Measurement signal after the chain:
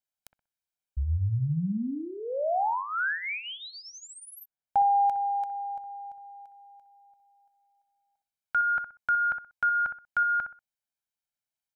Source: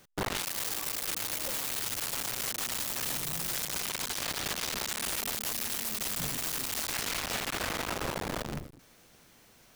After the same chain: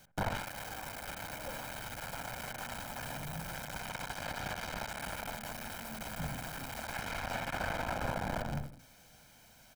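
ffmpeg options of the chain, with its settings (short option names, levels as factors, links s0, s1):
-filter_complex "[0:a]aecho=1:1:1.3:0.65,acrossover=split=2100[s0][s1];[s0]aecho=1:1:63|126|189:0.355|0.0887|0.0222[s2];[s1]acompressor=threshold=0.00562:ratio=6[s3];[s2][s3]amix=inputs=2:normalize=0,volume=0.794"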